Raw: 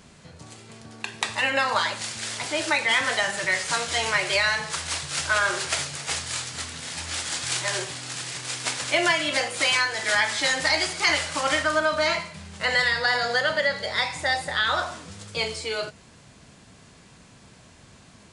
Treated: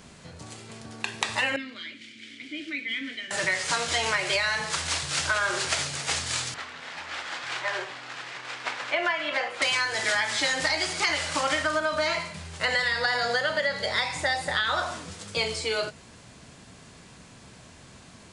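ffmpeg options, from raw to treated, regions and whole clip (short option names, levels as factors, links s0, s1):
-filter_complex "[0:a]asettb=1/sr,asplit=3[s0][s1][s2];[s0]atrim=end=1.564[s3];[s1]atrim=start=1.56:end=3.31,asetpts=PTS-STARTPTS,afade=t=in:d=0.004:c=qsin,afade=t=out:st=1.746:d=0.004:c=qsin,asplit=3[s4][s5][s6];[s4]bandpass=f=270:t=q:w=8,volume=1[s7];[s5]bandpass=f=2290:t=q:w=8,volume=0.501[s8];[s6]bandpass=f=3010:t=q:w=8,volume=0.355[s9];[s7][s8][s9]amix=inputs=3:normalize=0,equalizer=f=280:t=o:w=0.95:g=3.5[s10];[s2]atrim=start=3.306[s11];[s3][s10]acrossfade=d=0.004:c1=hsin:c2=qsin[s12];[s12][s11]acrossfade=d=0.004:c1=qsin:c2=hsin,asettb=1/sr,asplit=3[s13][s14][s15];[s13]atrim=end=6.544[s16];[s14]atrim=start=6.54:end=9.62,asetpts=PTS-STARTPTS,afade=t=in:d=0.004:c=qsin,afade=t=out:st=3.076:d=0.004:c=qsin,bandpass=f=1300:t=q:w=0.63,aemphasis=mode=reproduction:type=50fm[s17];[s15]atrim=start=9.616[s18];[s16][s17]acrossfade=d=0.004:c1=hsin:c2=qsin[s19];[s19][s18]acrossfade=d=0.004:c1=qsin:c2=hsin,acrossover=split=9200[s20][s21];[s21]acompressor=threshold=0.00355:ratio=4:attack=1:release=60[s22];[s20][s22]amix=inputs=2:normalize=0,bandreject=f=50:t=h:w=6,bandreject=f=100:t=h:w=6,bandreject=f=150:t=h:w=6,bandreject=f=200:t=h:w=6,acompressor=threshold=0.0631:ratio=6,volume=1.26"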